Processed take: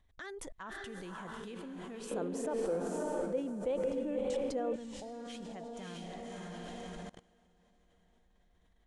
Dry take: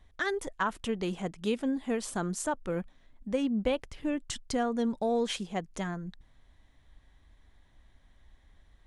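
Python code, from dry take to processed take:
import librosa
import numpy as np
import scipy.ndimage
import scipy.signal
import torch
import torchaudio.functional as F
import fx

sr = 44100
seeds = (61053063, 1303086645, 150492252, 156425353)

y = fx.echo_diffused(x, sr, ms=592, feedback_pct=41, wet_db=-4)
y = fx.level_steps(y, sr, step_db=24)
y = fx.peak_eq(y, sr, hz=470.0, db=15.0, octaves=1.5, at=(2.11, 4.76))
y = y * librosa.db_to_amplitude(3.5)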